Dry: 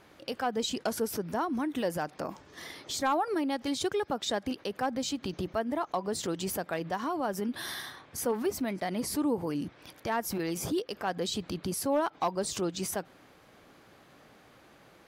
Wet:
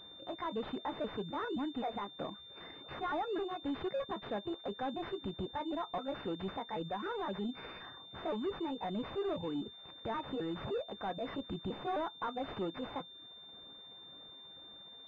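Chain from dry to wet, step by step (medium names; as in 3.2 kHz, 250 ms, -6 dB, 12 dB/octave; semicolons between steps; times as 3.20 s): pitch shift switched off and on +5 st, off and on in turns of 260 ms; on a send at -12 dB: reverberation, pre-delay 3 ms; on the sum: saturation -28 dBFS, distortion -13 dB; reverb removal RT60 0.53 s; class-D stage that switches slowly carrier 3.6 kHz; trim -2.5 dB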